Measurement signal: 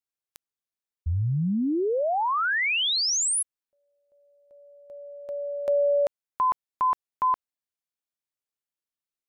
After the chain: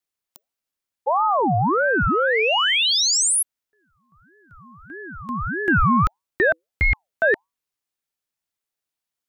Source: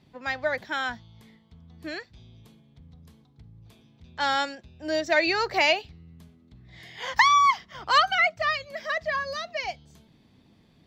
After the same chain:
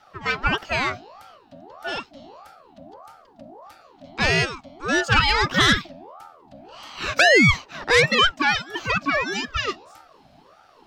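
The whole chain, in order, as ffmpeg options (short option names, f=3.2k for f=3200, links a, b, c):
-af "aeval=exprs='0.422*sin(PI/2*1.78*val(0)/0.422)':c=same,afreqshift=79,aeval=exprs='val(0)*sin(2*PI*740*n/s+740*0.45/1.6*sin(2*PI*1.6*n/s))':c=same"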